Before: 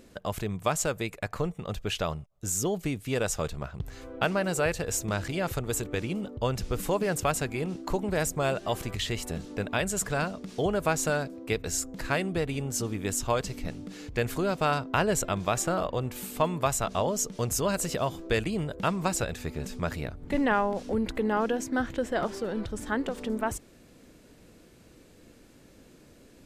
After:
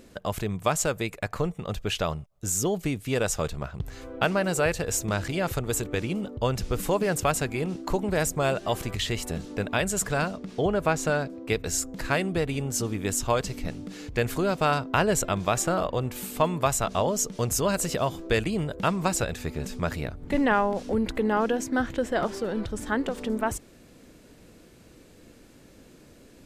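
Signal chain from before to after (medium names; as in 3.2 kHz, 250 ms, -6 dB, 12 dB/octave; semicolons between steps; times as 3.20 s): 10.36–11.48 s: treble shelf 4.2 kHz -> 8 kHz -10 dB; trim +2.5 dB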